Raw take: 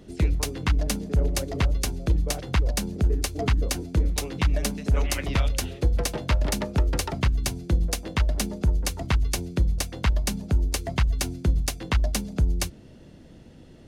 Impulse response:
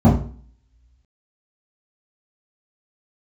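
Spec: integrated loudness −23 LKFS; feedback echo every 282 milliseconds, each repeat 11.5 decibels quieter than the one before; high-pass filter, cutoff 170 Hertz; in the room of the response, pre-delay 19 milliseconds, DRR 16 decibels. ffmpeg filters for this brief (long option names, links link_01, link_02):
-filter_complex "[0:a]highpass=170,aecho=1:1:282|564|846:0.266|0.0718|0.0194,asplit=2[link_01][link_02];[1:a]atrim=start_sample=2205,adelay=19[link_03];[link_02][link_03]afir=irnorm=-1:irlink=0,volume=-37.5dB[link_04];[link_01][link_04]amix=inputs=2:normalize=0,volume=6dB"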